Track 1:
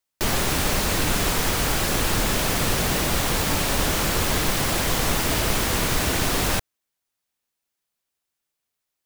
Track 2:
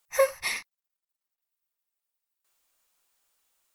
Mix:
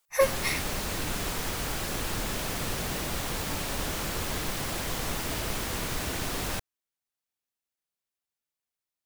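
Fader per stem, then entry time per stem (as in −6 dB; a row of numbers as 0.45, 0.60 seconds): −9.5, −0.5 decibels; 0.00, 0.00 seconds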